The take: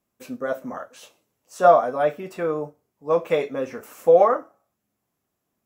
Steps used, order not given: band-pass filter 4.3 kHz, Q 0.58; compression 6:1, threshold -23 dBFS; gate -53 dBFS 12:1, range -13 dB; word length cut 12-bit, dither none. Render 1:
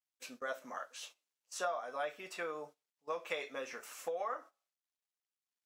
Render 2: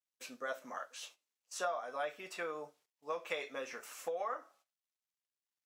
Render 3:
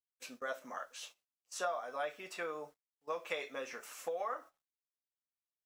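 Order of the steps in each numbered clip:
word length cut > compression > band-pass filter > gate; word length cut > gate > compression > band-pass filter; compression > band-pass filter > word length cut > gate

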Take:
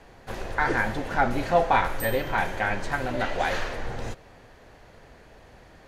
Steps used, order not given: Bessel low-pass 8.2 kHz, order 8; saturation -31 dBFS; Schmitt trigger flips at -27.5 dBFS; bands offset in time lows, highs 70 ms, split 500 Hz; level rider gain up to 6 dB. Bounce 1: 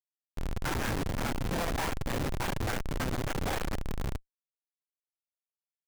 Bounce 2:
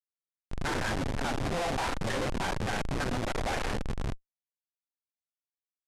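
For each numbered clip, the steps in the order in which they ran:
Bessel low-pass > saturation > level rider > bands offset in time > Schmitt trigger; bands offset in time > saturation > level rider > Schmitt trigger > Bessel low-pass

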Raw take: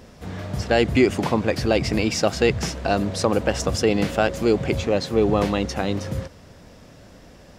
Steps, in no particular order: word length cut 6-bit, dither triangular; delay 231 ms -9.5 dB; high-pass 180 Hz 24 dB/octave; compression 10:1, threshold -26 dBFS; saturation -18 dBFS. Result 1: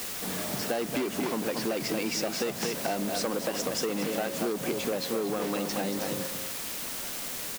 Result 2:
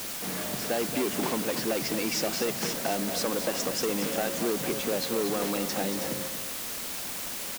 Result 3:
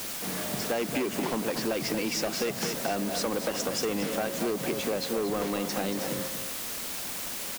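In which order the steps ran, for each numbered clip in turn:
delay > saturation > high-pass > word length cut > compression; saturation > compression > high-pass > word length cut > delay; high-pass > saturation > word length cut > delay > compression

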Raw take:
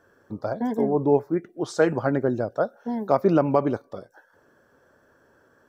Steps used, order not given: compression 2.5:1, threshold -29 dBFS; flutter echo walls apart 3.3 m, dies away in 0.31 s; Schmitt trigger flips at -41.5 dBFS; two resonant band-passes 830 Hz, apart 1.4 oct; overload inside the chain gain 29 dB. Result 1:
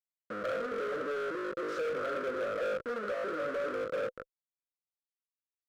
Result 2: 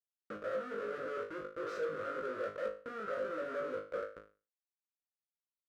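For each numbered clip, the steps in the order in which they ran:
flutter echo > Schmitt trigger > two resonant band-passes > overload inside the chain > compression; Schmitt trigger > flutter echo > compression > two resonant band-passes > overload inside the chain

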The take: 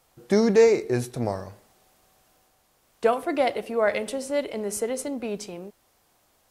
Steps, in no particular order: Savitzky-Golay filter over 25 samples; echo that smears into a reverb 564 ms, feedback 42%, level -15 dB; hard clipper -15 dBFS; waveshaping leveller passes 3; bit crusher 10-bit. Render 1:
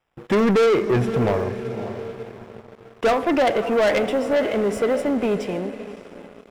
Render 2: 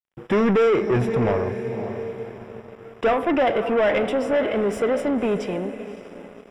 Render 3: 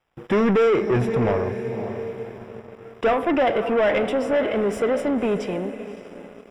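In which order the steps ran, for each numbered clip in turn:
bit crusher > Savitzky-Golay filter > hard clipper > echo that smears into a reverb > waveshaping leveller; echo that smears into a reverb > hard clipper > waveshaping leveller > bit crusher > Savitzky-Golay filter; bit crusher > echo that smears into a reverb > hard clipper > waveshaping leveller > Savitzky-Golay filter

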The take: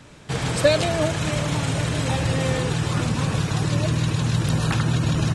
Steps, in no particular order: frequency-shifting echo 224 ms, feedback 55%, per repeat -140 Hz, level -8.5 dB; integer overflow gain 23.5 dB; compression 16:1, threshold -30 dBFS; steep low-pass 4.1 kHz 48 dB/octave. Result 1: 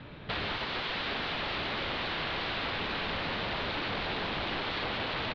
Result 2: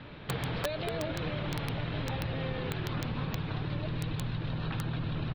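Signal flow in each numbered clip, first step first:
frequency-shifting echo > integer overflow > steep low-pass > compression; frequency-shifting echo > compression > steep low-pass > integer overflow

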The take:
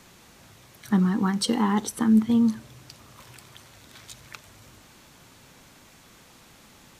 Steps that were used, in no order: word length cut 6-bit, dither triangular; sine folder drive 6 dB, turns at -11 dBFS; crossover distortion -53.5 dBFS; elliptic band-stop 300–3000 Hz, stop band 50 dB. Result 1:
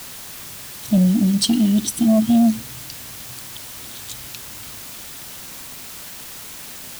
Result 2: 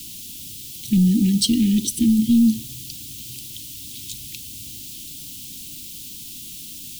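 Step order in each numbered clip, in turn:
elliptic band-stop > sine folder > crossover distortion > word length cut; sine folder > crossover distortion > word length cut > elliptic band-stop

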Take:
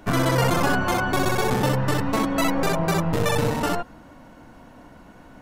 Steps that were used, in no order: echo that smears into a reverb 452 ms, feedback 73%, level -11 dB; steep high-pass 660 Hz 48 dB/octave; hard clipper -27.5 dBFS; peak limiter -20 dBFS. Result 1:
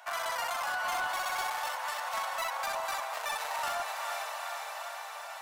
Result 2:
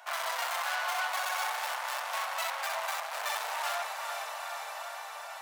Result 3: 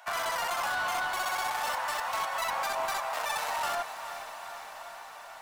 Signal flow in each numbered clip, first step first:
echo that smears into a reverb > peak limiter > steep high-pass > hard clipper; echo that smears into a reverb > hard clipper > steep high-pass > peak limiter; steep high-pass > peak limiter > hard clipper > echo that smears into a reverb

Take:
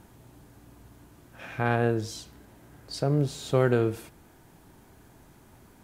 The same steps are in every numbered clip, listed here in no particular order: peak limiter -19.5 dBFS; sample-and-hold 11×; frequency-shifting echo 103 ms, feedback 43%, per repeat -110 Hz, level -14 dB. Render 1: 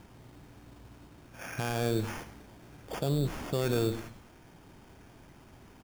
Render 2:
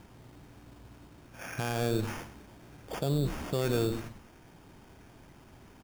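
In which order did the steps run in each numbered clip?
peak limiter > sample-and-hold > frequency-shifting echo; frequency-shifting echo > peak limiter > sample-and-hold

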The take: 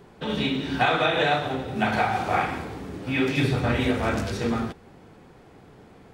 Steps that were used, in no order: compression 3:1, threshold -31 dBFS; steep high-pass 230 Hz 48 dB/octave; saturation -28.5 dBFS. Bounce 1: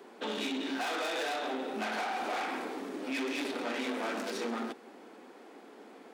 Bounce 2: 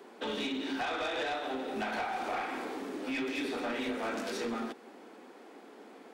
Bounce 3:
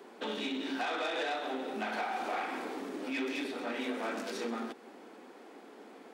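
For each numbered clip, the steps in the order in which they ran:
saturation > steep high-pass > compression; steep high-pass > compression > saturation; compression > saturation > steep high-pass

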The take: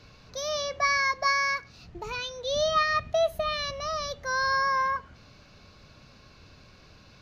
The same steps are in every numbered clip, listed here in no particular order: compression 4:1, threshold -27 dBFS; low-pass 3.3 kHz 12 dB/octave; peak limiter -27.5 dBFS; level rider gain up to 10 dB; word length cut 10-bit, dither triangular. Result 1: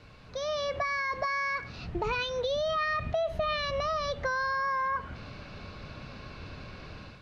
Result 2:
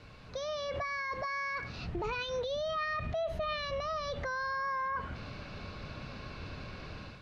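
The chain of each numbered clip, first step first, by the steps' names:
peak limiter > level rider > compression > word length cut > low-pass; compression > level rider > word length cut > peak limiter > low-pass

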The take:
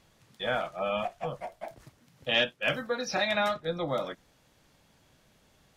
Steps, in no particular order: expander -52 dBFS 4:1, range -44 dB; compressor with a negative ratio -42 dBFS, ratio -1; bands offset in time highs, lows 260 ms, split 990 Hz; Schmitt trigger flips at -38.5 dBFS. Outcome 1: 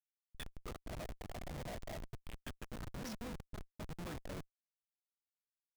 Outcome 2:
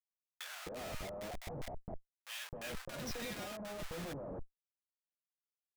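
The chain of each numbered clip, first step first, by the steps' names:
compressor with a negative ratio > bands offset in time > Schmitt trigger > expander; expander > Schmitt trigger > compressor with a negative ratio > bands offset in time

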